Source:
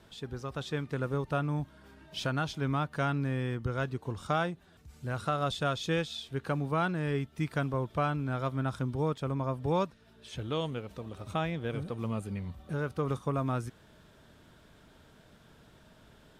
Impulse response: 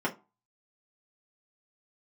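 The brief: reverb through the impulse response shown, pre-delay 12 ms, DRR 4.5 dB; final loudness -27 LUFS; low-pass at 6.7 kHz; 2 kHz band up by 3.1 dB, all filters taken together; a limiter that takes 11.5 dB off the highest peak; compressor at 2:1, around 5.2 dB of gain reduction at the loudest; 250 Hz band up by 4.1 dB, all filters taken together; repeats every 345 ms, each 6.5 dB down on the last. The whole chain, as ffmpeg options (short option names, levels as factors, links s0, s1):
-filter_complex "[0:a]lowpass=6700,equalizer=f=250:t=o:g=5.5,equalizer=f=2000:t=o:g=4.5,acompressor=threshold=0.0224:ratio=2,alimiter=level_in=2:limit=0.0631:level=0:latency=1,volume=0.501,aecho=1:1:345|690|1035|1380|1725|2070:0.473|0.222|0.105|0.0491|0.0231|0.0109,asplit=2[s0][s1];[1:a]atrim=start_sample=2205,adelay=12[s2];[s1][s2]afir=irnorm=-1:irlink=0,volume=0.211[s3];[s0][s3]amix=inputs=2:normalize=0,volume=3.16"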